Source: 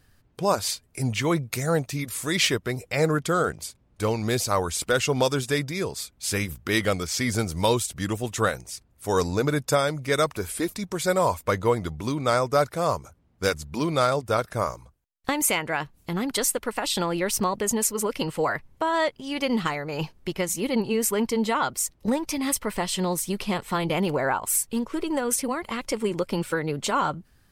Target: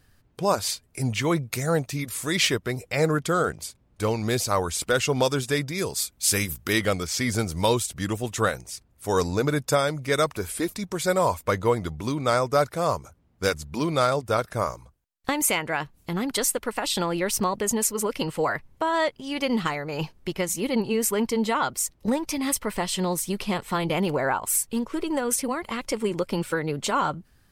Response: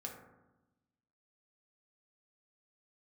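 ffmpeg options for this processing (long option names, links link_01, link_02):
-filter_complex "[0:a]asettb=1/sr,asplit=3[link_01][link_02][link_03];[link_01]atrim=end=5.784[link_04];[link_02]atrim=start=5.78:end=6.73,asetpts=PTS-STARTPTS,afade=type=in:duration=0.004:curve=qsin,afade=type=out:start_time=0.946:duration=0.004:curve=qsin,highshelf=frequency=4800:gain=10[link_05];[link_03]atrim=start=6.726[link_06];[link_04][link_05]acrossfade=duration=0.004:curve1=hsin:curve2=qsin[link_07];[link_07][link_06]acrossfade=duration=0.004:curve1=qsin:curve2=hsin"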